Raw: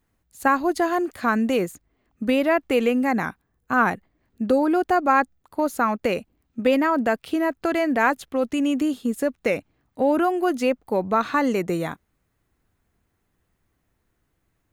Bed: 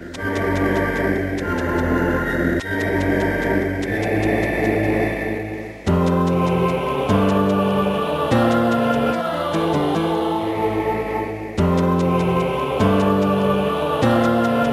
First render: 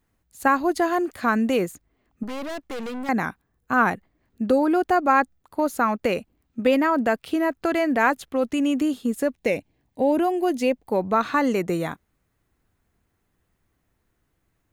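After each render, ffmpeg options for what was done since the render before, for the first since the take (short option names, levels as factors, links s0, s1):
-filter_complex "[0:a]asettb=1/sr,asplit=3[s0][s1][s2];[s0]atrim=end=2.234[s3];[s1]atrim=start=2.23:end=3.09,asetpts=PTS-STARTPTS,afade=t=in:d=0.004:c=qsin,afade=t=out:st=0.856:d=0.004:c=qsin,aeval=exprs='(tanh(31.6*val(0)+0.55)-tanh(0.55))/31.6':c=same[s4];[s2]atrim=start=3.086[s5];[s3][s4]acrossfade=d=0.004:c1=hsin:c2=qsin[s6];[s6][s5]acrossfade=d=0.004:c1=qsin:c2=hsin,asettb=1/sr,asplit=3[s7][s8][s9];[s7]atrim=end=9.344[s10];[s8]atrim=start=9.34:end=10.87,asetpts=PTS-STARTPTS,afade=t=in:d=0.004:c=qsin,afade=t=out:st=1.526:d=0.004:c=qsin,equalizer=f=1300:w=3.4:g=-13.5[s11];[s9]atrim=start=10.866[s12];[s10][s11]acrossfade=d=0.004:c1=hsin:c2=qsin[s13];[s13][s12]acrossfade=d=0.004:c1=qsin:c2=hsin"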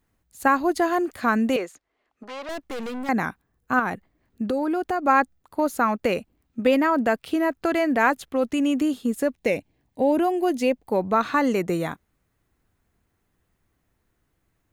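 -filter_complex "[0:a]asettb=1/sr,asplit=3[s0][s1][s2];[s0]atrim=end=1.564[s3];[s1]atrim=start=1.56:end=2.49,asetpts=PTS-STARTPTS,afade=t=in:d=0.004:c=qsin,afade=t=out:st=0.926:d=0.004:c=qsin,acrossover=split=400 7300:gain=0.112 1 0.126[s4][s5][s6];[s4][s5][s6]amix=inputs=3:normalize=0[s7];[s2]atrim=start=2.486[s8];[s3][s7]acrossfade=d=0.004:c1=hsin:c2=qsin[s9];[s9][s8]acrossfade=d=0.004:c1=qsin:c2=hsin,asettb=1/sr,asplit=3[s10][s11][s12];[s10]atrim=end=3.794[s13];[s11]atrim=start=3.79:end=5.06,asetpts=PTS-STARTPTS,afade=t=in:d=0.004:c=qsin,afade=t=out:st=1.266:d=0.004:c=qsin,acompressor=threshold=0.0794:ratio=3:attack=3.2:release=140:knee=1:detection=peak[s14];[s12]atrim=start=5.056[s15];[s13][s14]acrossfade=d=0.004:c1=hsin:c2=qsin[s16];[s16][s15]acrossfade=d=0.004:c1=qsin:c2=hsin"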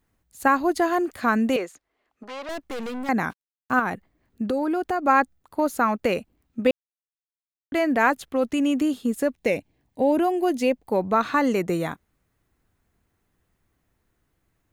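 -filter_complex "[0:a]asplit=3[s0][s1][s2];[s0]afade=t=out:st=3.29:d=0.02[s3];[s1]acrusher=bits=7:mix=0:aa=0.5,afade=t=in:st=3.29:d=0.02,afade=t=out:st=3.8:d=0.02[s4];[s2]afade=t=in:st=3.8:d=0.02[s5];[s3][s4][s5]amix=inputs=3:normalize=0,asplit=3[s6][s7][s8];[s6]atrim=end=6.71,asetpts=PTS-STARTPTS,afade=t=out:st=6.706:d=0.004:c=hsin[s9];[s7]atrim=start=6.71:end=7.72,asetpts=PTS-STARTPTS,volume=0[s10];[s8]atrim=start=7.72,asetpts=PTS-STARTPTS,afade=t=in:d=0.004:c=hsin[s11];[s9][s10][s11]concat=n=3:v=0:a=1"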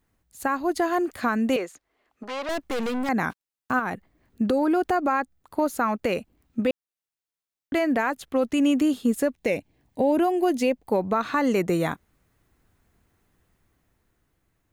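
-af "dynaudnorm=f=400:g=7:m=1.78,alimiter=limit=0.211:level=0:latency=1:release=393"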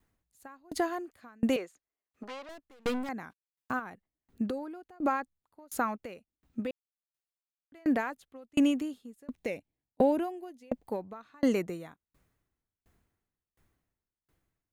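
-af "aeval=exprs='0.211*(cos(1*acos(clip(val(0)/0.211,-1,1)))-cos(1*PI/2))+0.00266*(cos(3*acos(clip(val(0)/0.211,-1,1)))-cos(3*PI/2))':c=same,aeval=exprs='val(0)*pow(10,-35*if(lt(mod(1.4*n/s,1),2*abs(1.4)/1000),1-mod(1.4*n/s,1)/(2*abs(1.4)/1000),(mod(1.4*n/s,1)-2*abs(1.4)/1000)/(1-2*abs(1.4)/1000))/20)':c=same"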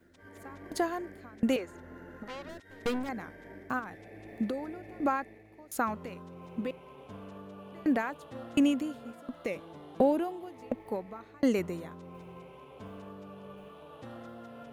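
-filter_complex "[1:a]volume=0.0335[s0];[0:a][s0]amix=inputs=2:normalize=0"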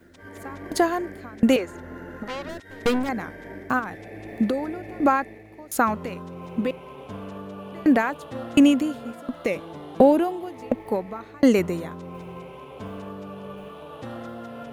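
-af "volume=2.99"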